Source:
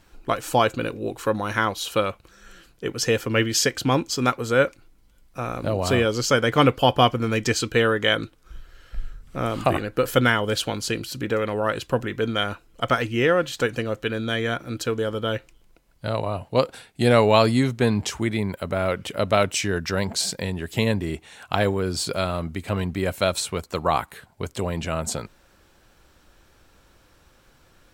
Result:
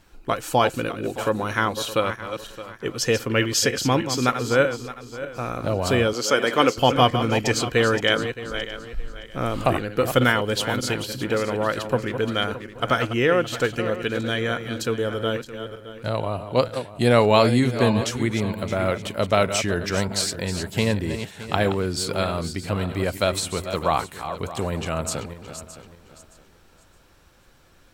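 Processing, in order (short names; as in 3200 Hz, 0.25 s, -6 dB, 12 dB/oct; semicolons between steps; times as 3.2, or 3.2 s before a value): regenerating reverse delay 0.309 s, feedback 51%, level -9.5 dB; 6.13–6.78 HPF 280 Hz 12 dB/oct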